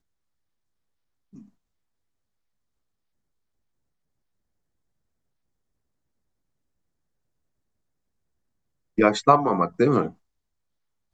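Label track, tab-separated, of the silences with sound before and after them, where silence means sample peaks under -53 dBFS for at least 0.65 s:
1.490000	8.980000	silence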